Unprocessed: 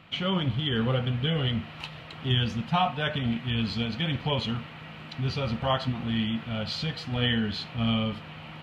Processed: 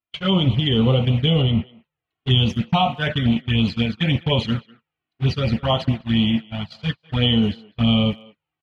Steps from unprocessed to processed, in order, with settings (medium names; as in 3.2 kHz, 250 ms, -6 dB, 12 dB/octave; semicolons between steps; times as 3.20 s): gate -29 dBFS, range -48 dB; in parallel at 0 dB: peak limiter -19.5 dBFS, peak gain reduction 7 dB; on the sum: touch-sensitive flanger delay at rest 2.9 ms, full sweep at -18 dBFS; 1.42–2.04 s: distance through air 280 m; speakerphone echo 200 ms, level -21 dB; trim +4.5 dB